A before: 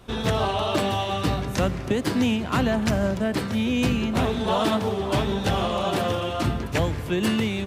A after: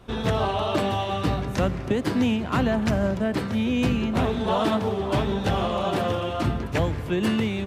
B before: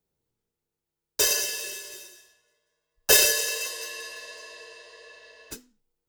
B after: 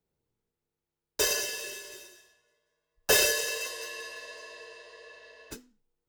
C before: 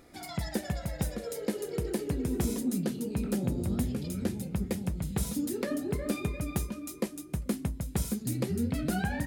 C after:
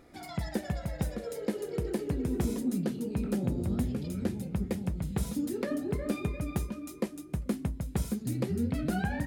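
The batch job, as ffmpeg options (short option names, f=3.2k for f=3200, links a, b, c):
-af "asoftclip=type=hard:threshold=-12dB,highshelf=f=3.6k:g=-7"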